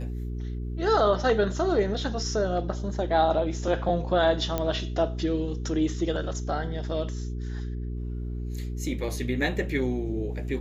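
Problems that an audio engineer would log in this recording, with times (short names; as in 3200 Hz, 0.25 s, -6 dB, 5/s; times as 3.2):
hum 60 Hz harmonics 7 -32 dBFS
4.58 pop -13 dBFS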